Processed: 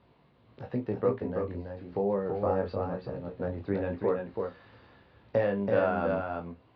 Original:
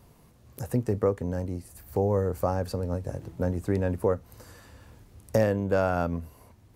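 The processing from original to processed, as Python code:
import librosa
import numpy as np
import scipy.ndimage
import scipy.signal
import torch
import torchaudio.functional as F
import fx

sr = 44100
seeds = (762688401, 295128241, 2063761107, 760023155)

y = scipy.signal.sosfilt(scipy.signal.butter(8, 4100.0, 'lowpass', fs=sr, output='sos'), x)
y = fx.doubler(y, sr, ms=35.0, db=-10.5)
y = y + 10.0 ** (-4.5 / 20.0) * np.pad(y, (int(331 * sr / 1000.0), 0))[:len(y)]
y = fx.chorus_voices(y, sr, voices=2, hz=0.95, base_ms=18, depth_ms=3.0, mix_pct=35)
y = fx.highpass(y, sr, hz=200.0, slope=6)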